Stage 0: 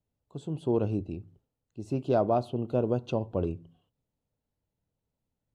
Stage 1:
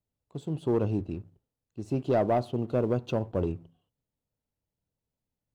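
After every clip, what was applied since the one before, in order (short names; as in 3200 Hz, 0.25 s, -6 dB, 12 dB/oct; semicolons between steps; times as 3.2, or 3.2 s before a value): sample leveller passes 1; gain -2 dB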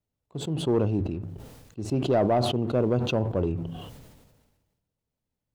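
high shelf 5100 Hz -5 dB; sustainer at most 41 dB/s; gain +2 dB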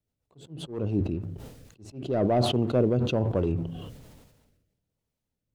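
rotary speaker horn 7.5 Hz, later 1.2 Hz, at 0.87; auto swell 0.338 s; gain +2.5 dB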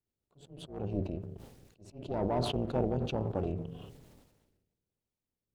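AM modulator 290 Hz, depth 75%; gain -4 dB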